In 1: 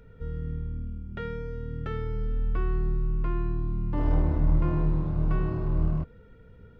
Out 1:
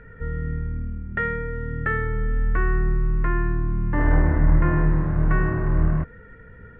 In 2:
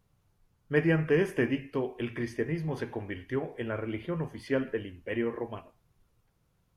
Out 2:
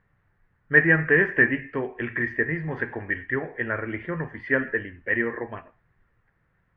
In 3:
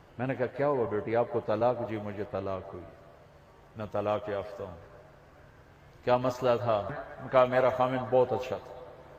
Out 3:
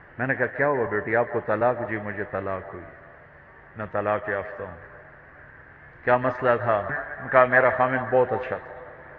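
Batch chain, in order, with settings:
resonant low-pass 1.8 kHz, resonance Q 6.7; normalise loudness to -24 LUFS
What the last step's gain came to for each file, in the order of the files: +5.5 dB, +2.0 dB, +3.5 dB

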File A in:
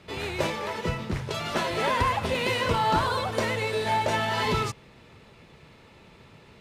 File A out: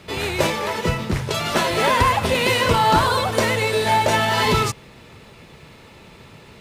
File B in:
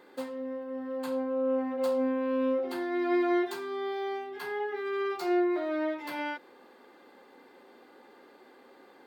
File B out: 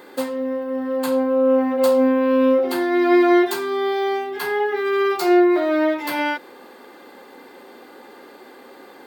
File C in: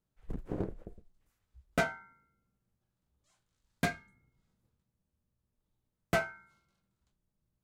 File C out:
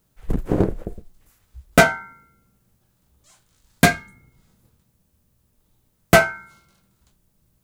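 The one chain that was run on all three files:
treble shelf 7.9 kHz +8.5 dB; normalise loudness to -19 LUFS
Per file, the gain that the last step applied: +7.5 dB, +12.0 dB, +16.5 dB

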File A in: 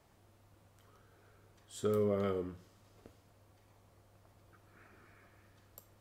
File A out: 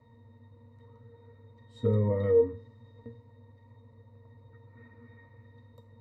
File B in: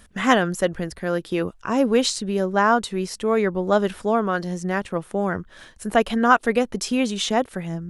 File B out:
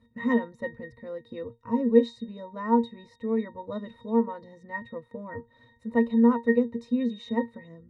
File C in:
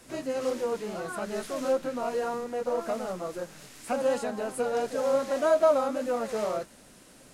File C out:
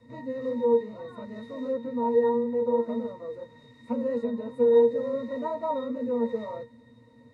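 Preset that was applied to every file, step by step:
pitch-class resonator A#, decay 0.17 s; normalise loudness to -27 LUFS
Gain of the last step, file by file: +20.5 dB, +5.0 dB, +12.5 dB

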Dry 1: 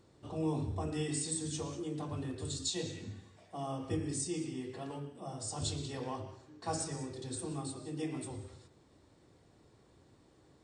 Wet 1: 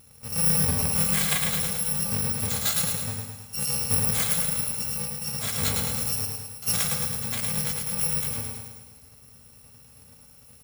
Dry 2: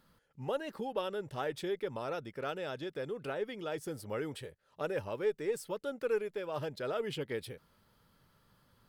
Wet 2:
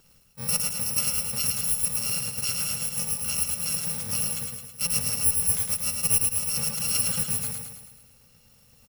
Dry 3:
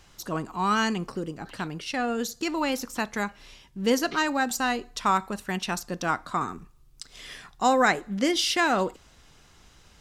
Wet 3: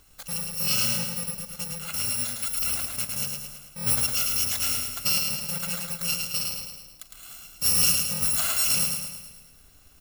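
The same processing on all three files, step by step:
bit-reversed sample order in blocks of 128 samples; on a send: feedback delay 108 ms, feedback 55%, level -4 dB; on the sum: normalise loudness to -24 LUFS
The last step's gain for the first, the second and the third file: +10.5 dB, +8.5 dB, -2.0 dB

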